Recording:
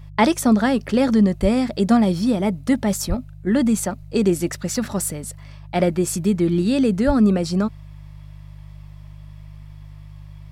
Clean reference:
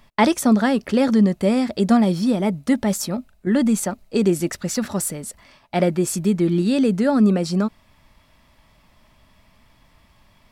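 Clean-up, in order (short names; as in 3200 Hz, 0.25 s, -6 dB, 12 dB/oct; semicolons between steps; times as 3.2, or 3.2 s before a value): de-hum 50.2 Hz, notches 3; de-plosive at 1.41/3.08/7.06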